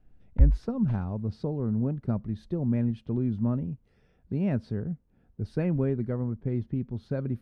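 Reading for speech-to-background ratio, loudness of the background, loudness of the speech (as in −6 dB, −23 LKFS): −4.5 dB, −26.0 LKFS, −30.5 LKFS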